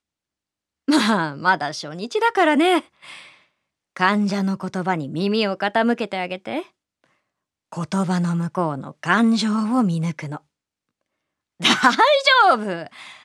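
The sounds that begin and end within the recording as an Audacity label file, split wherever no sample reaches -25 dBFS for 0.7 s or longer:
0.880000	2.800000	sound
3.970000	6.600000	sound
7.730000	10.370000	sound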